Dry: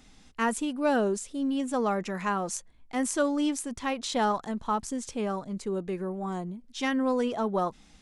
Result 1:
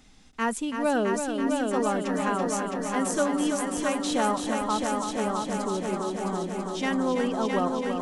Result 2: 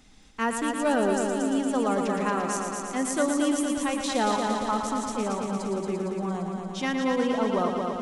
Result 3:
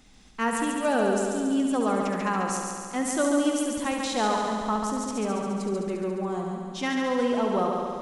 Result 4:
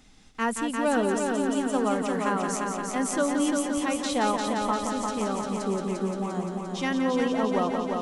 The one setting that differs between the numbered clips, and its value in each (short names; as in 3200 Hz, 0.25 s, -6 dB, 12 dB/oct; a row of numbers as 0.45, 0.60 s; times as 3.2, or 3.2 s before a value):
multi-head echo, time: 331, 115, 70, 174 ms